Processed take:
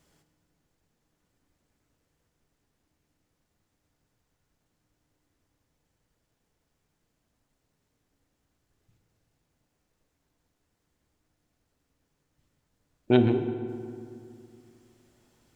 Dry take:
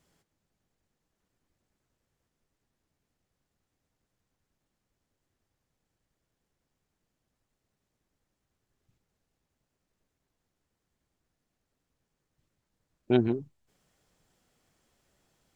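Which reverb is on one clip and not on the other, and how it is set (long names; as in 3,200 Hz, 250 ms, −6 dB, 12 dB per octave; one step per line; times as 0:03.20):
feedback delay network reverb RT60 2.4 s, low-frequency decay 1.25×, high-frequency decay 0.55×, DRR 6.5 dB
level +4 dB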